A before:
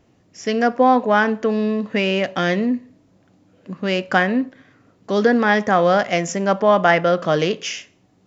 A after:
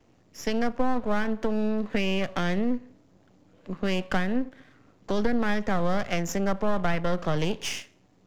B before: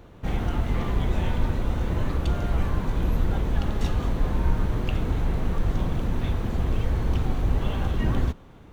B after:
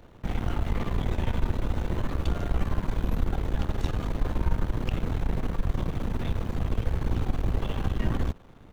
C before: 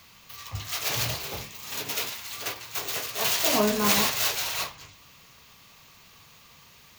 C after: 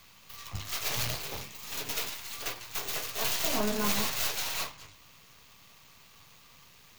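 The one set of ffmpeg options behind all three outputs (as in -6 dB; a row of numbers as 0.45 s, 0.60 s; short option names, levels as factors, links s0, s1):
-filter_complex "[0:a]aeval=exprs='if(lt(val(0),0),0.251*val(0),val(0))':c=same,acrossover=split=190[s0][s1];[s1]acompressor=threshold=0.0501:ratio=5[s2];[s0][s2]amix=inputs=2:normalize=0"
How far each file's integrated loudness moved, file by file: -9.5 LU, -3.5 LU, -5.5 LU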